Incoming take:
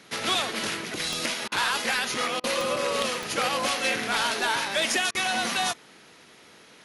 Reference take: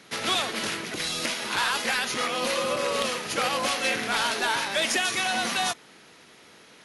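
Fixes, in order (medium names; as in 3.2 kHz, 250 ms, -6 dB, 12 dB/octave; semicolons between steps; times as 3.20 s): de-click; interpolate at 1.48/2.40/5.11 s, 37 ms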